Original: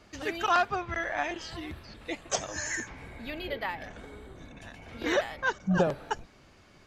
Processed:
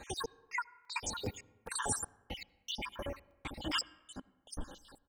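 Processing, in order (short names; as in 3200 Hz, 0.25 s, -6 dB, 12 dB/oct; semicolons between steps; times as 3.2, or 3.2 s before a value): random spectral dropouts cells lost 68%; comb 5 ms, depth 50%; negative-ratio compressor -37 dBFS, ratio -0.5; step gate "xx..x..xxxx..x" 87 bpm -60 dB; on a send at -21 dB: air absorption 200 m + reverb RT60 1.7 s, pre-delay 83 ms; on the sum: speed mistake 33 rpm record played at 45 rpm; crackling interface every 0.41 s, samples 128, zero, from 0.85; gain +2 dB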